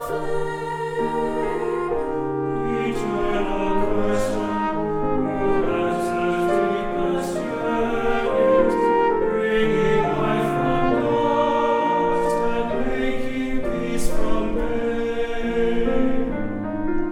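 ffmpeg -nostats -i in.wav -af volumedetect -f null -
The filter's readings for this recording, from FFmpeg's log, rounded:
mean_volume: -20.5 dB
max_volume: -6.2 dB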